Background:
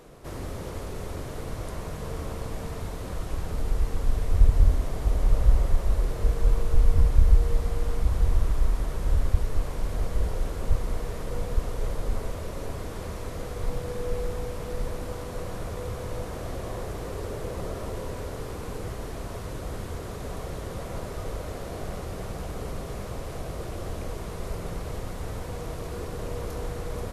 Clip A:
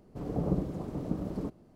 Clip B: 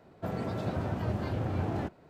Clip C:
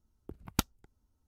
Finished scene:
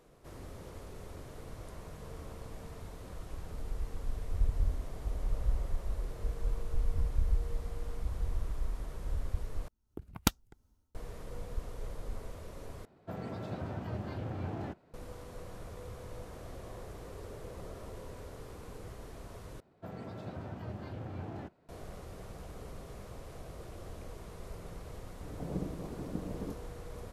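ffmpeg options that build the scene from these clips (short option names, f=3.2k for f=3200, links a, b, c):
-filter_complex "[2:a]asplit=2[a][b];[0:a]volume=-12dB[c];[3:a]dynaudnorm=f=100:g=5:m=12dB[d];[1:a]dynaudnorm=f=290:g=3:m=8dB[e];[c]asplit=4[f][g][h][i];[f]atrim=end=9.684[j];[d]atrim=end=1.27,asetpts=PTS-STARTPTS,volume=-8dB[k];[g]atrim=start=10.946:end=12.854[l];[a]atrim=end=2.09,asetpts=PTS-STARTPTS,volume=-6.5dB[m];[h]atrim=start=14.936:end=19.604[n];[b]atrim=end=2.09,asetpts=PTS-STARTPTS,volume=-10dB[o];[i]atrim=start=21.686[p];[e]atrim=end=1.75,asetpts=PTS-STARTPTS,volume=-14dB,afade=t=in:d=0.004:c=hsin,afade=t=out:st=1.746:d=0.004:c=hsin,adelay=1104264S[q];[j][k]acrossfade=d=0.004:c1=hsin:c2=hsin[r];[r][l]acrossfade=d=0.004:c1=hsin:c2=hsin[s];[s][m]acrossfade=d=0.004:c1=hsin:c2=hsin[t];[t][n]acrossfade=d=0.004:c1=hsin:c2=hsin[u];[u][o]acrossfade=d=0.004:c1=hsin:c2=hsin[v];[v][p]acrossfade=d=0.004:c1=hsin:c2=hsin[w];[w][q]amix=inputs=2:normalize=0"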